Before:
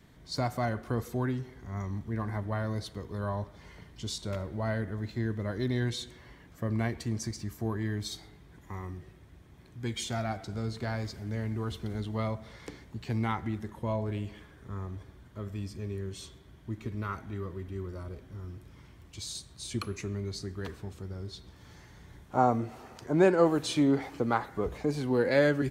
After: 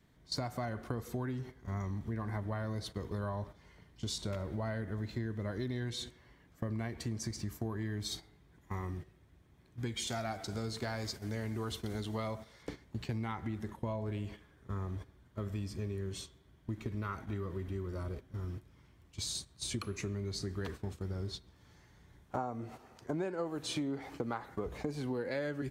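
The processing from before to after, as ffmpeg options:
-filter_complex "[0:a]asettb=1/sr,asplit=3[s0][s1][s2];[s0]atrim=end=10.074[s3];[s1]atrim=start=10.07:end=12.63,asetpts=PTS-STARTPTS,afade=t=in:d=0.004:c=qsin,afade=t=out:st=2.556:d=0.004:c=qsin,bass=f=250:g=-5,treble=f=4000:g=6[s4];[s2]atrim=start=12.626[s5];[s3][s4]acrossfade=d=0.004:c1=hsin:c2=qsin[s6];[s6][s5]acrossfade=d=0.004:c1=qsin:c2=hsin,agate=range=0.251:threshold=0.00708:ratio=16:detection=peak,acompressor=threshold=0.0141:ratio=8,volume=1.41"

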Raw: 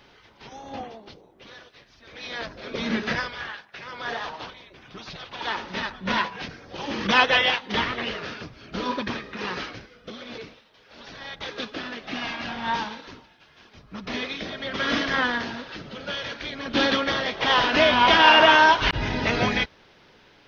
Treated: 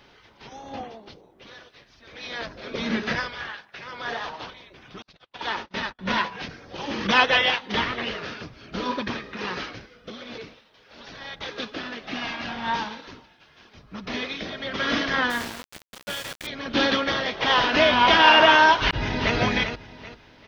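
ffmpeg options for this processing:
-filter_complex "[0:a]asettb=1/sr,asplit=3[s0][s1][s2];[s0]atrim=end=5.024[s3];[s1]atrim=start=5.02:end=5.99,asetpts=PTS-STARTPTS,afade=t=in:d=0.004:c=qsin,afade=t=out:st=0.966:d=0.004:c=qsin,agate=range=0.01:threshold=0.0141:ratio=16:release=100:detection=peak[s4];[s2]atrim=start=5.986[s5];[s3][s4]acrossfade=d=0.004:c1=hsin:c2=qsin[s6];[s6][s5]acrossfade=d=0.004:c1=qsin:c2=hsin,asettb=1/sr,asplit=3[s7][s8][s9];[s7]atrim=end=15.304[s10];[s8]atrim=start=15.3:end=16.47,asetpts=PTS-STARTPTS,afade=t=in:d=0.004:c=qsin,afade=t=out:st=1.166:d=0.004:c=qsin,aeval=exprs='val(0)*gte(abs(val(0)),0.0299)':c=same[s11];[s9]atrim=start=16.466[s12];[s10][s11]acrossfade=d=0.004:c1=hsin:c2=qsin[s13];[s13][s12]acrossfade=d=0.004:c1=qsin:c2=hsin,asplit=2[s14][s15];[s15]afade=t=in:st=18.81:d=0.01,afade=t=out:st=19.36:d=0.01,aecho=0:1:390|780|1170|1560:0.421697|0.126509|0.0379527|0.0113858[s16];[s14][s16]amix=inputs=2:normalize=0"

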